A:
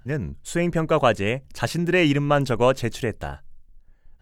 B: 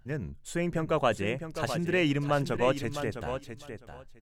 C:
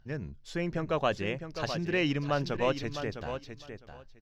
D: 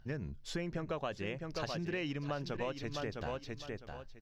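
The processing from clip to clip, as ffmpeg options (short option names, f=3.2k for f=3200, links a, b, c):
-af "bandreject=f=60:t=h:w=6,bandreject=f=120:t=h:w=6,aecho=1:1:657|1314:0.355|0.0568,volume=-7.5dB"
-af "highshelf=f=6.8k:t=q:w=3:g=-9.5,volume=-2.5dB"
-af "acompressor=threshold=-37dB:ratio=6,volume=2dB"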